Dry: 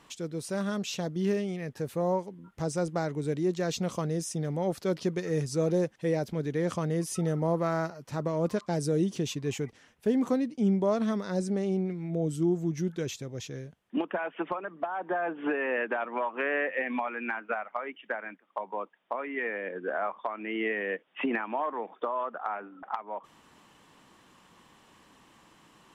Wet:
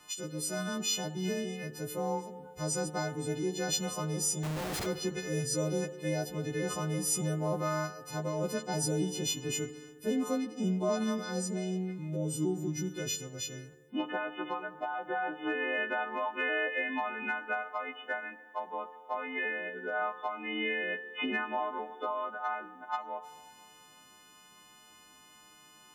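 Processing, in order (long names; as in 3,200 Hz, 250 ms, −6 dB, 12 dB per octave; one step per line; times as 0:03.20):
every partial snapped to a pitch grid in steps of 3 semitones
0:04.43–0:04.86: comparator with hysteresis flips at −39 dBFS
feedback delay network reverb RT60 2 s, low-frequency decay 0.8×, high-frequency decay 0.35×, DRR 11.5 dB
level −4.5 dB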